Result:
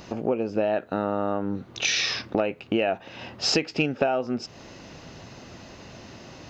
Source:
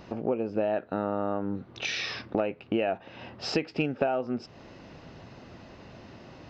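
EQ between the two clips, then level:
high-shelf EQ 3,500 Hz +9.5 dB
parametric band 6,600 Hz +7.5 dB 0.26 octaves
+3.0 dB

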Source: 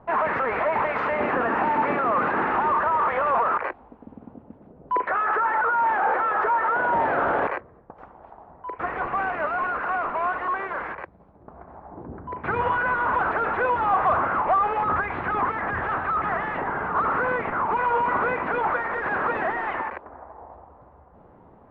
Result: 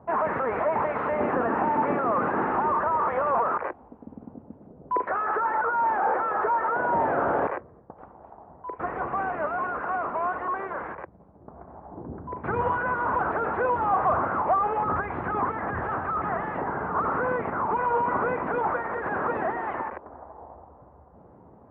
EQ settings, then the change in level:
high-pass filter 61 Hz
high-frequency loss of the air 430 metres
parametric band 2,400 Hz −6 dB 1.8 octaves
+1.5 dB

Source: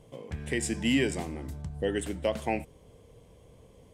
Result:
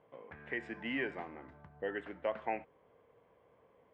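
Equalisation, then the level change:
low-pass filter 1,600 Hz 24 dB per octave
first difference
+15.0 dB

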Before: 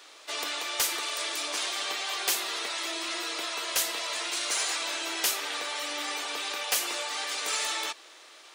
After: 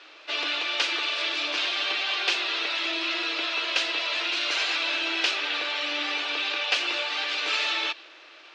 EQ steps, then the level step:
dynamic equaliser 3,600 Hz, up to +5 dB, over −45 dBFS, Q 1.3
loudspeaker in its box 270–4,800 Hz, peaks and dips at 310 Hz +9 dB, 600 Hz +3 dB, 1,500 Hz +5 dB, 2,600 Hz +8 dB
0.0 dB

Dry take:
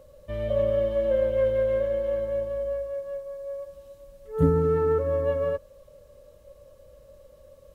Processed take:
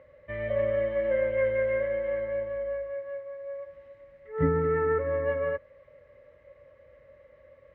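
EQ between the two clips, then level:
high-pass filter 75 Hz 12 dB per octave
low-pass with resonance 2,000 Hz, resonance Q 9.6
parametric band 190 Hz −8.5 dB 0.2 octaves
−3.5 dB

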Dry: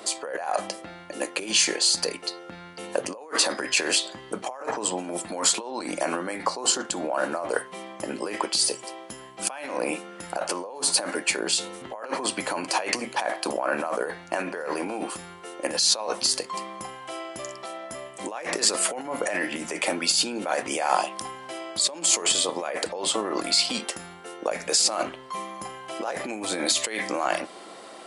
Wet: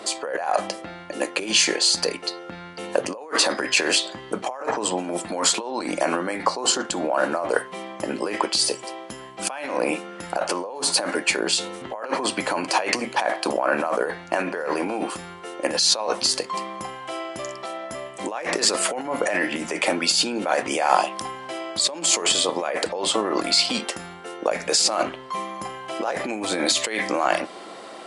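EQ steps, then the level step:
high-shelf EQ 9,200 Hz −11 dB
+4.5 dB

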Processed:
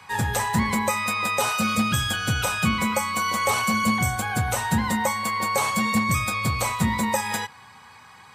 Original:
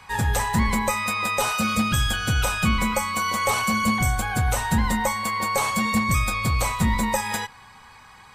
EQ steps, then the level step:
high-pass filter 85 Hz 24 dB per octave
0.0 dB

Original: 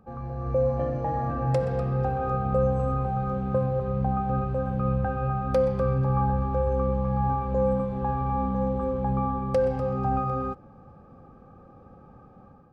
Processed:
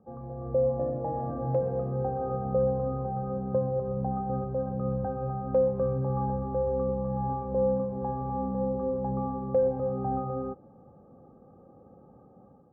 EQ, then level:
high-pass filter 190 Hz 6 dB per octave
Chebyshev low-pass filter 610 Hz, order 2
0.0 dB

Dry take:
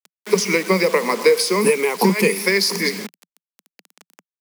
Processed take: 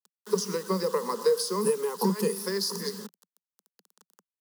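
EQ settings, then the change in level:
phaser with its sweep stopped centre 450 Hz, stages 8
−8.5 dB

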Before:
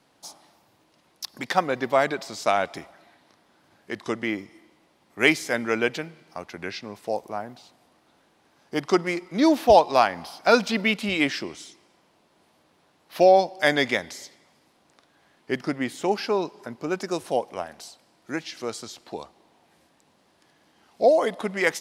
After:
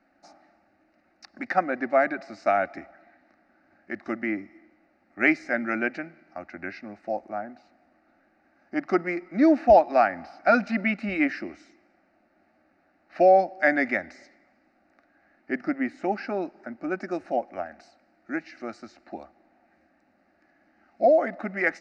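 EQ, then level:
head-to-tape spacing loss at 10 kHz 38 dB
parametric band 3,500 Hz +8.5 dB 2.6 octaves
phaser with its sweep stopped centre 670 Hz, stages 8
+2.0 dB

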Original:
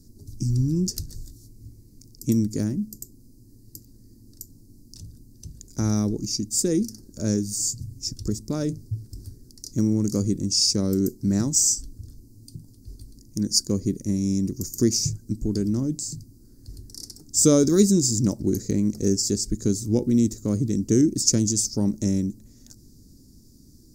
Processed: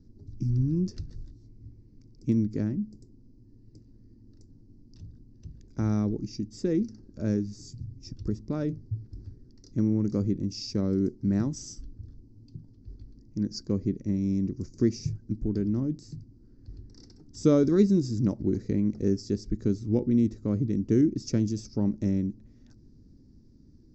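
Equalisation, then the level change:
Chebyshev low-pass with heavy ripple 7,900 Hz, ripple 3 dB
high-frequency loss of the air 320 metres
0.0 dB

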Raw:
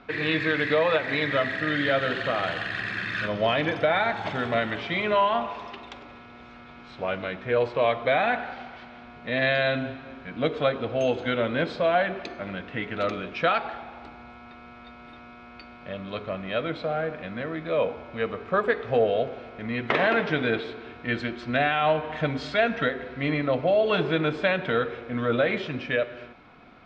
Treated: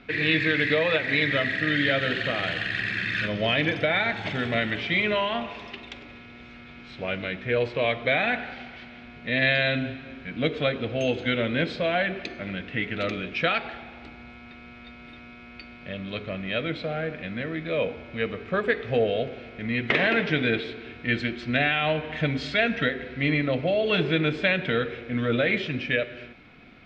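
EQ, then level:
tilt shelving filter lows +7 dB, about 820 Hz
high shelf with overshoot 1,500 Hz +11.5 dB, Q 1.5
−3.5 dB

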